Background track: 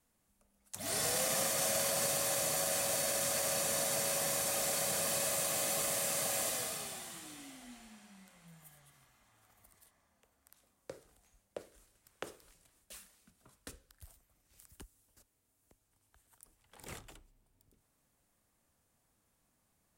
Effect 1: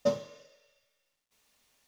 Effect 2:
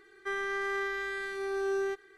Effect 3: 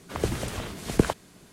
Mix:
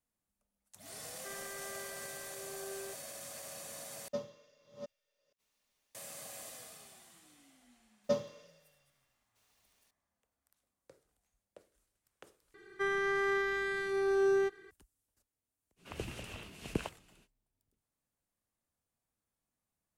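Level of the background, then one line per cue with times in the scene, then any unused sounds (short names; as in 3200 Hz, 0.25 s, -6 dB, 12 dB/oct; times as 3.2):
background track -13 dB
0.99 add 2 -15 dB
4.08 replace with 1 -11 dB + reverse delay 0.416 s, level -8 dB
8.04 add 1 -4 dB
12.54 replace with 2 -0.5 dB + bell 140 Hz +12 dB 1.9 oct
15.76 add 3 -14.5 dB, fades 0.05 s + bell 2700 Hz +12.5 dB 0.36 oct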